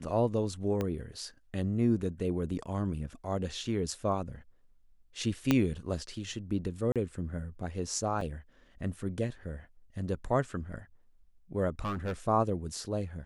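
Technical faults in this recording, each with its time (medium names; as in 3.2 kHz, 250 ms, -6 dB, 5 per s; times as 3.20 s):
0.81 s: pop -19 dBFS
5.51 s: pop -11 dBFS
6.92–6.96 s: dropout 37 ms
8.21 s: dropout 3.4 ms
11.79–12.13 s: clipped -29.5 dBFS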